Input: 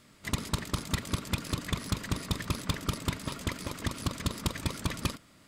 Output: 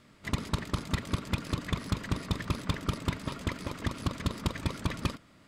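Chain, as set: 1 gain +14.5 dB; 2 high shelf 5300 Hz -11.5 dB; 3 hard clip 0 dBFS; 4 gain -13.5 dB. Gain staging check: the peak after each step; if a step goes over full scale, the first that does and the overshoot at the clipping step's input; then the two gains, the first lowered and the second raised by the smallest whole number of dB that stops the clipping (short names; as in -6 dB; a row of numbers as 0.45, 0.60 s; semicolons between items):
-4.5, -4.5, -4.5, -18.0 dBFS; no overload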